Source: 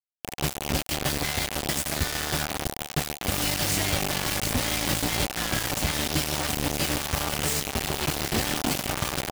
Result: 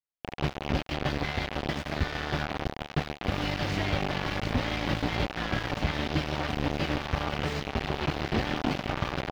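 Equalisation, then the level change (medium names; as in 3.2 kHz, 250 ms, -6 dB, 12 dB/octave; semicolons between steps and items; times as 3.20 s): distance through air 270 m; 0.0 dB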